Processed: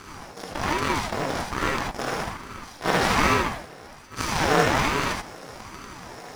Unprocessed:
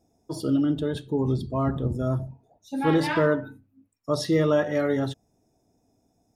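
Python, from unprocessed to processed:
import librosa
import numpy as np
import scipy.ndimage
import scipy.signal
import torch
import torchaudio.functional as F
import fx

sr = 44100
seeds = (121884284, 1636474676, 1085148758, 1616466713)

p1 = fx.bin_compress(x, sr, power=0.2)
p2 = scipy.signal.sosfilt(scipy.signal.butter(2, 480.0, 'highpass', fs=sr, output='sos'), p1)
p3 = fx.auto_swell(p2, sr, attack_ms=144.0)
p4 = fx.cheby_harmonics(p3, sr, harmonics=(7,), levels_db=(-18,), full_scale_db=-6.0)
p5 = fx.quant_companded(p4, sr, bits=4)
p6 = p4 + F.gain(torch.from_numpy(p5), -10.5).numpy()
p7 = fx.rev_gated(p6, sr, seeds[0], gate_ms=100, shape='rising', drr_db=-1.0)
p8 = fx.ring_lfo(p7, sr, carrier_hz=420.0, swing_pct=70, hz=1.2)
y = F.gain(torch.from_numpy(p8), -2.0).numpy()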